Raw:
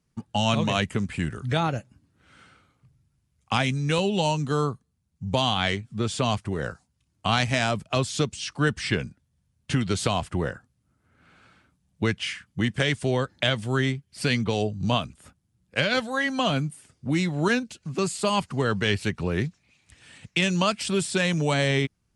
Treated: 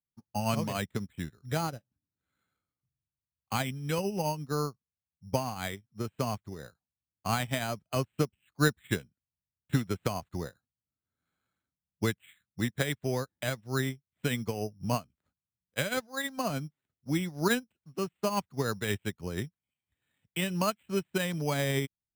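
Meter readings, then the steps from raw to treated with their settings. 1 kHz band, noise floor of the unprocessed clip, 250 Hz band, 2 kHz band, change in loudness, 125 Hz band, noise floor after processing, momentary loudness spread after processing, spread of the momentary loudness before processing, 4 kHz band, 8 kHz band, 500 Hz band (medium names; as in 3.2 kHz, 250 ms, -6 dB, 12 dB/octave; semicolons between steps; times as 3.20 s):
-7.0 dB, -73 dBFS, -7.0 dB, -8.5 dB, -7.0 dB, -7.0 dB, under -85 dBFS, 10 LU, 7 LU, -11.0 dB, -5.0 dB, -6.5 dB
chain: careless resampling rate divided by 8×, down filtered, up hold; upward expansion 2.5:1, over -37 dBFS; trim -1 dB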